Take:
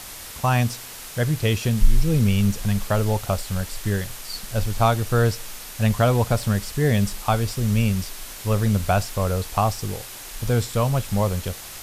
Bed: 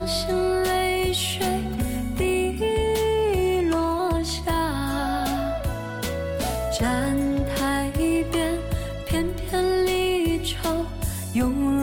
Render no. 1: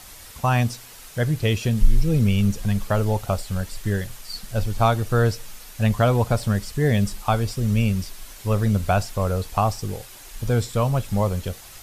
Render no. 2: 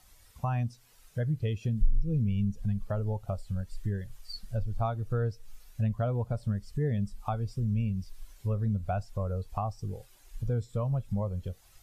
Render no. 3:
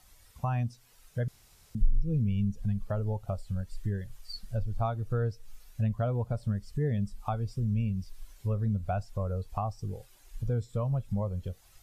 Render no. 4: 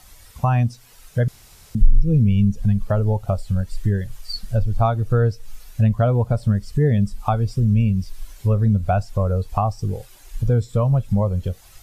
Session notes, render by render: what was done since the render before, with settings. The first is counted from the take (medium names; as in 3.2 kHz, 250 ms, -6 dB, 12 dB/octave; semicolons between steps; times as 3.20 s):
noise reduction 7 dB, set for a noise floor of -38 dBFS
compression 2.5:1, threshold -28 dBFS, peak gain reduction 13 dB; spectral contrast expander 1.5:1
1.28–1.75 s: room tone
trim +12 dB; peak limiter -3 dBFS, peak gain reduction 1 dB